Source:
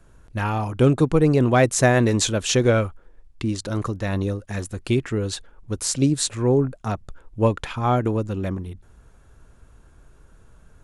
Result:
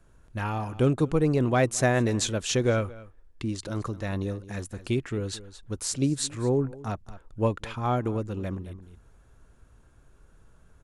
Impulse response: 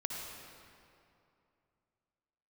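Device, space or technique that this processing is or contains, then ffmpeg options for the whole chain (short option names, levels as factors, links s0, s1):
ducked delay: -filter_complex "[0:a]asplit=3[s0][s1][s2];[s1]adelay=220,volume=0.398[s3];[s2]apad=whole_len=487592[s4];[s3][s4]sidechaincompress=threshold=0.0251:ratio=4:attack=6.9:release=590[s5];[s0][s5]amix=inputs=2:normalize=0,volume=0.501"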